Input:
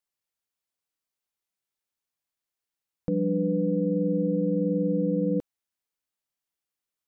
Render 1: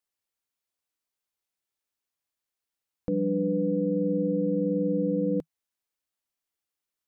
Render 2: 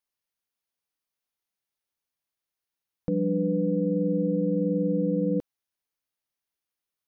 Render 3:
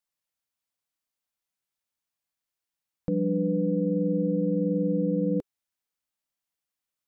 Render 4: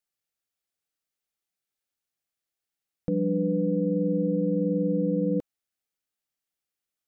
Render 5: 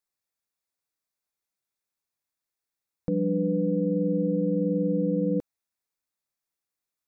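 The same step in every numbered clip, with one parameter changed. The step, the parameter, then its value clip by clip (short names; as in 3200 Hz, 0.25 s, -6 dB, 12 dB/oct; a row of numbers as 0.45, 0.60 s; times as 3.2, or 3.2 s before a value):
notch, frequency: 160, 7600, 400, 1000, 3000 Hz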